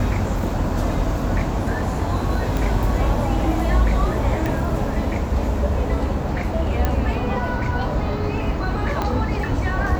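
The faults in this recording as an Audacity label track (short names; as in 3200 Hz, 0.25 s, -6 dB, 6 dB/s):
2.570000	2.570000	pop
4.460000	4.460000	pop
6.850000	6.850000	pop -7 dBFS
9.020000	9.020000	pop -10 dBFS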